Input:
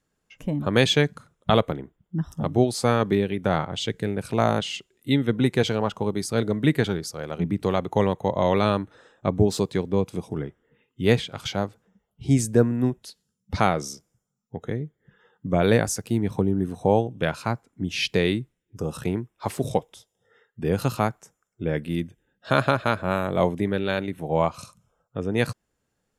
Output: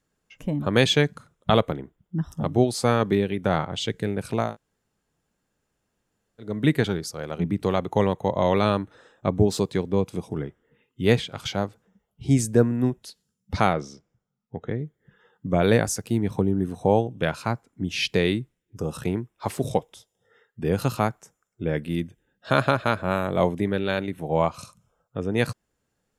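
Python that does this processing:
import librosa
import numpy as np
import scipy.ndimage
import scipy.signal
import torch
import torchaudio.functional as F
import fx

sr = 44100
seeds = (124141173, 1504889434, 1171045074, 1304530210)

y = fx.lowpass(x, sr, hz=3400.0, slope=12, at=(13.73, 14.79))
y = fx.edit(y, sr, fx.room_tone_fill(start_s=4.45, length_s=2.05, crossfade_s=0.24), tone=tone)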